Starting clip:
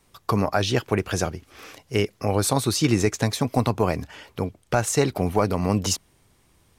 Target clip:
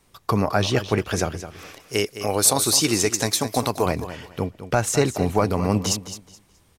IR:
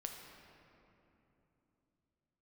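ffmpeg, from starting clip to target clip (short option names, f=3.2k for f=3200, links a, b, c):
-filter_complex "[0:a]asettb=1/sr,asplit=3[a][b][c];[a]atrim=end=1.804[d];[b]atrim=start=1.8:end=3.86,asetpts=PTS-STARTPTS,afade=t=in:d=0.004:c=qsin,afade=t=out:st=2.056:d=0.004:c=qsin,bass=f=250:g=-8,treble=f=4k:g=9[e];[c]atrim=start=3.856[f];[d][e]acrossfade=d=0.004:c1=hsin:c2=qsin[g];[g][f]acrossfade=d=0.004:c1=qsin:c2=hsin,aecho=1:1:212|424|636:0.251|0.0553|0.0122,volume=1dB"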